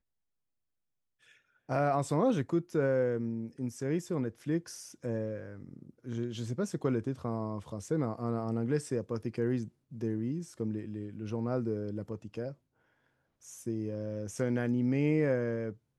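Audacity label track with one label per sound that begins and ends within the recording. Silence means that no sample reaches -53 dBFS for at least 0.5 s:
1.270000	12.540000	sound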